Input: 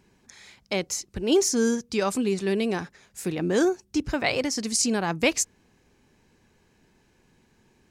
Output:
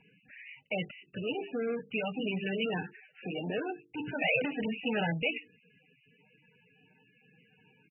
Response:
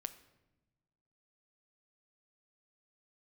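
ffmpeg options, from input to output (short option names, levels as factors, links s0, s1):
-filter_complex "[0:a]asettb=1/sr,asplit=3[s0][s1][s2];[s0]atrim=end=2.814[s3];[s1]atrim=start=2.81:end=3.58,asetpts=PTS-STARTPTS,afade=t=in:d=0.004:c=qsin,afade=t=out:st=0.766:d=0.004:c=qsin,acrossover=split=190 3800:gain=0.158 1 0.126[s4][s5][s6];[s4][s5][s6]amix=inputs=3:normalize=0[s7];[s2]atrim=start=3.576[s8];[s3][s7]acrossfade=d=0.004:c1=hsin:c2=qsin[s9];[s9][s8]acrossfade=d=0.004:c1=qsin:c2=hsin,bandreject=f=50:t=h:w=6,bandreject=f=100:t=h:w=6,bandreject=f=150:t=h:w=6,bandreject=f=200:t=h:w=6,bandreject=f=250:t=h:w=6,bandreject=f=300:t=h:w=6,bandreject=f=350:t=h:w=6,bandreject=f=400:t=h:w=6,bandreject=f=450:t=h:w=6,aecho=1:1:6.5:0.46,asettb=1/sr,asplit=3[s10][s11][s12];[s10]atrim=end=1.794[s13];[s11]atrim=start=1.79:end=2.2,asetpts=PTS-STARTPTS,afade=t=in:d=0.004:c=qsin,afade=t=out:st=0.406:d=0.004:c=qsin,acrossover=split=230|3000[s14][s15][s16];[s15]acompressor=threshold=0.0355:ratio=4[s17];[s14][s17][s16]amix=inputs=3:normalize=0[s18];[s12]atrim=start=2.196[s19];[s13][s18]acrossfade=d=0.004:c1=hsin:c2=qsin[s20];[s20][s19]acrossfade=d=0.004:c1=qsin:c2=hsin,alimiter=limit=0.126:level=0:latency=1:release=13,asplit=3[s21][s22][s23];[s21]afade=t=out:st=4.21:d=0.02[s24];[s22]acontrast=72,afade=t=in:st=4.21:d=0.02,afade=t=out:st=5.12:d=0.02[s25];[s23]afade=t=in:st=5.12:d=0.02[s26];[s24][s25][s26]amix=inputs=3:normalize=0,asoftclip=type=tanh:threshold=0.0473,highpass=f=130:w=0.5412,highpass=f=130:w=1.3066,equalizer=f=330:t=q:w=4:g=-10,equalizer=f=1100:t=q:w=4:g=-9,equalizer=f=2700:t=q:w=4:g=10,equalizer=f=5200:t=q:w=4:g=8,lowpass=f=6500:w=0.5412,lowpass=f=6500:w=1.3066" -ar 24000 -c:a libmp3lame -b:a 8k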